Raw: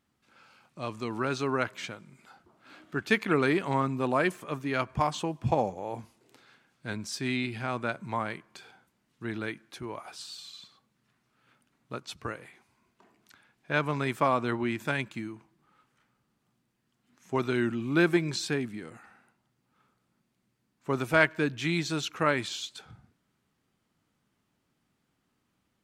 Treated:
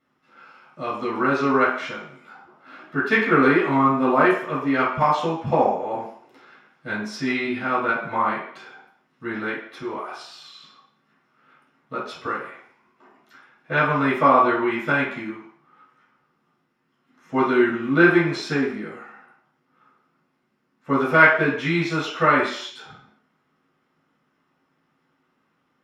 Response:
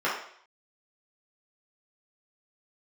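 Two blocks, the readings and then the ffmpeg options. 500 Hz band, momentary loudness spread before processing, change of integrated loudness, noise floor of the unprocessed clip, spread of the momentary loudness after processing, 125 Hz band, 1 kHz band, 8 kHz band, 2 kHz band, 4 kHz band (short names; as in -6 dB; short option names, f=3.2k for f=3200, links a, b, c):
+8.5 dB, 16 LU, +9.0 dB, -77 dBFS, 17 LU, +3.5 dB, +11.0 dB, n/a, +10.0 dB, +2.5 dB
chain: -filter_complex "[0:a]equalizer=f=240:w=3.4:g=5.5[a];[1:a]atrim=start_sample=2205[b];[a][b]afir=irnorm=-1:irlink=0,volume=-4dB"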